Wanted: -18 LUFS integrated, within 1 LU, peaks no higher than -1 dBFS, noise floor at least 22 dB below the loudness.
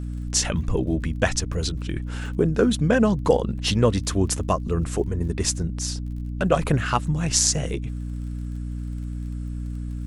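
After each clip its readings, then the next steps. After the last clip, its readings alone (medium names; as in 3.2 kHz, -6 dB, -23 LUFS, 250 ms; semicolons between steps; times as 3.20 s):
tick rate 34 per s; hum 60 Hz; highest harmonic 300 Hz; hum level -28 dBFS; loudness -24.0 LUFS; peak level -2.5 dBFS; loudness target -18.0 LUFS
-> de-click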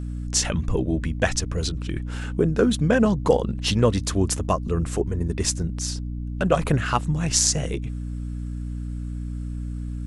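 tick rate 0 per s; hum 60 Hz; highest harmonic 300 Hz; hum level -28 dBFS
-> de-hum 60 Hz, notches 5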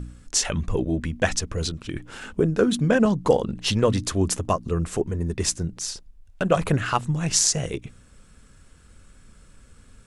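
hum not found; loudness -24.0 LUFS; peak level -2.5 dBFS; loudness target -18.0 LUFS
-> trim +6 dB; peak limiter -1 dBFS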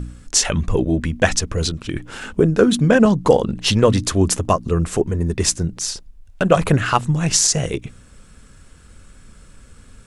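loudness -18.0 LUFS; peak level -1.0 dBFS; noise floor -46 dBFS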